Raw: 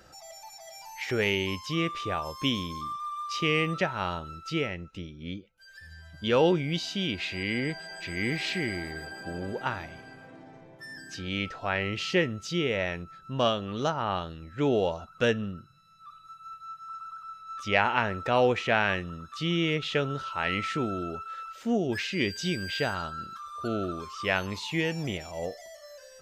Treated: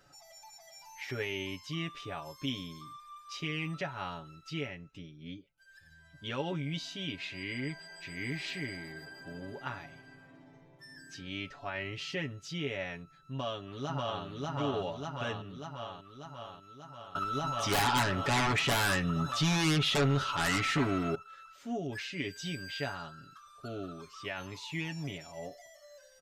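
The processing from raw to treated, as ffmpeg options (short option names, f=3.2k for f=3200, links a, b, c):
-filter_complex "[0:a]asplit=2[a][b];[b]afade=t=in:st=13.13:d=0.01,afade=t=out:st=14.23:d=0.01,aecho=0:1:590|1180|1770|2360|2950|3540|4130|4720|5310|5900|6490:0.944061|0.61364|0.398866|0.259263|0.168521|0.109538|0.0712|0.04628|0.030082|0.0195533|0.0127096[c];[a][c]amix=inputs=2:normalize=0,asettb=1/sr,asplit=3[d][e][f];[d]atrim=end=17.154[g];[e]atrim=start=17.15:end=21.15,asetpts=PTS-STARTPTS,afade=t=in:d=0.004:c=qsin,afade=t=out:st=3.996:d=0.004:c=qsin,aeval=exprs='0.447*sin(PI/2*7.94*val(0)/0.447)':c=same[h];[f]atrim=start=21.146[i];[g][h]acrossfade=d=0.004:c1=hsin:c2=qsin[j];[j][i]acrossfade=d=0.004:c1=qsin:c2=hsin,alimiter=limit=-16.5dB:level=0:latency=1:release=38,equalizer=f=480:w=7.5:g=-9,aecho=1:1:7.1:0.73,volume=-9dB"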